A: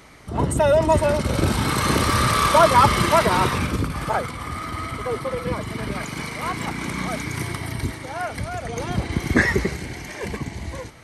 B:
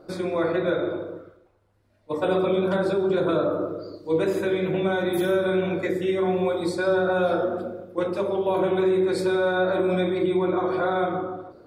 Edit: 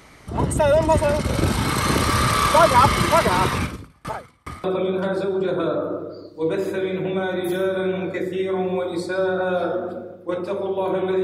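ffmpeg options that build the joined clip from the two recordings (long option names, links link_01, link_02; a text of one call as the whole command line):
ffmpeg -i cue0.wav -i cue1.wav -filter_complex "[0:a]asettb=1/sr,asplit=3[link_01][link_02][link_03];[link_01]atrim=end=3.634[link_04];[link_02]atrim=start=3.63:end=4.64,asetpts=PTS-STARTPTS,afade=type=in:duration=0.004:curve=qsin,afade=type=out:start_time=1.006:duration=0.004:curve=qsin,aeval=exprs='val(0)*pow(10,-35*if(lt(mod(2.4*n/s,1),2*abs(2.4)/1000),1-mod(2.4*n/s,1)/(2*abs(2.4)/1000),(mod(2.4*n/s,1)-2*abs(2.4)/1000)/(1-2*abs(2.4)/1000))/20)':channel_layout=same[link_05];[link_03]atrim=start=4.636[link_06];[link_04][link_05]acrossfade=duration=0.004:curve1=hsin:curve2=qsin[link_07];[link_07][link_06]acrossfade=duration=0.004:curve1=qsin:curve2=hsin,apad=whole_dur=11.23,atrim=end=11.23,atrim=end=4.642[link_08];[1:a]atrim=start=2.328:end=8.92[link_09];[link_08][link_09]acrossfade=duration=0.004:curve1=hsin:curve2=hsin" out.wav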